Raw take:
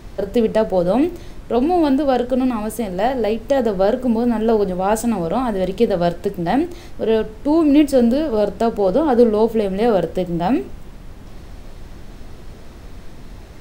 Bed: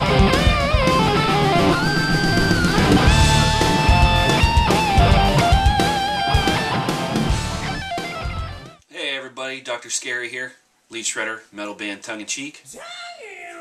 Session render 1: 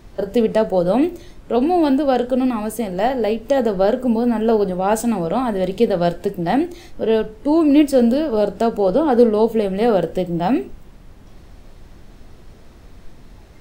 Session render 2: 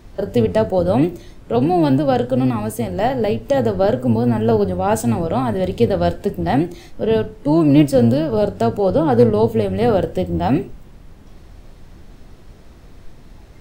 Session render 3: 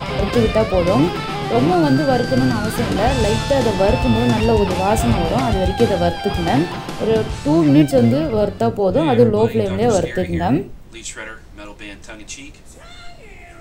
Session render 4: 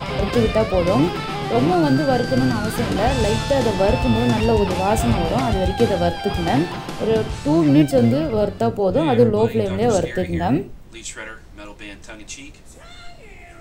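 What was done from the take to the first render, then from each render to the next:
noise reduction from a noise print 6 dB
sub-octave generator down 1 octave, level −3 dB; hard clipping −2.5 dBFS, distortion −40 dB
mix in bed −6.5 dB
level −2 dB

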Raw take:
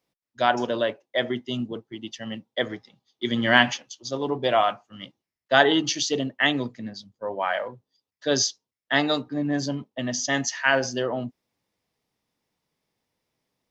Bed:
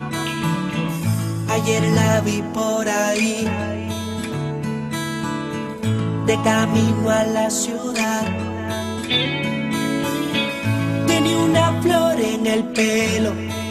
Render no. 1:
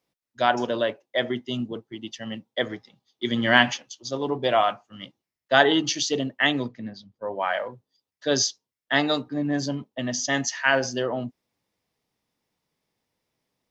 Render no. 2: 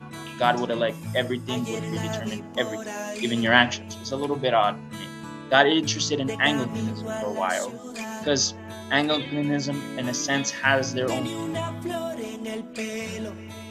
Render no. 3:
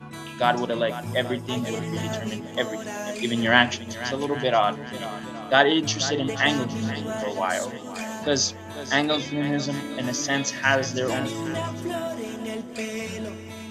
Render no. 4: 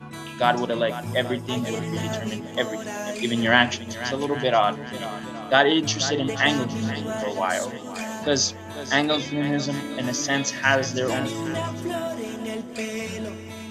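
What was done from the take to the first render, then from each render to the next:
0:06.68–0:07.35: high-frequency loss of the air 140 metres
mix in bed −13.5 dB
feedback echo with a long and a short gap by turns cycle 816 ms, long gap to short 1.5 to 1, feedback 33%, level −14.5 dB
level +1 dB; brickwall limiter −3 dBFS, peak gain reduction 2 dB

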